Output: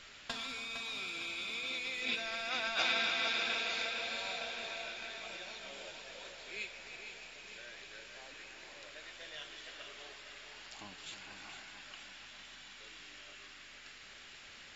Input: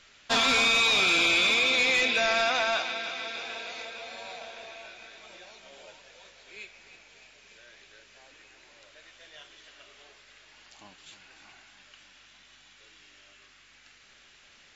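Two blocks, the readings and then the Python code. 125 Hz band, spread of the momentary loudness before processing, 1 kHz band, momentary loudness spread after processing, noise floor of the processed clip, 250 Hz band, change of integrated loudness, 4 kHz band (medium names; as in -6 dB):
-10.5 dB, 20 LU, -11.0 dB, 18 LU, -54 dBFS, -12.5 dB, -15.5 dB, -10.0 dB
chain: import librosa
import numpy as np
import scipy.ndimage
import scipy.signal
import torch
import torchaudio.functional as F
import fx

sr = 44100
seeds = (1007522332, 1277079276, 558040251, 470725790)

y = fx.over_compress(x, sr, threshold_db=-30.0, ratio=-0.5)
y = fx.dynamic_eq(y, sr, hz=700.0, q=0.77, threshold_db=-48.0, ratio=4.0, max_db=-6)
y = fx.notch(y, sr, hz=6100.0, q=13.0)
y = fx.echo_feedback(y, sr, ms=459, feedback_pct=45, wet_db=-8.0)
y = y * librosa.db_to_amplitude(-3.5)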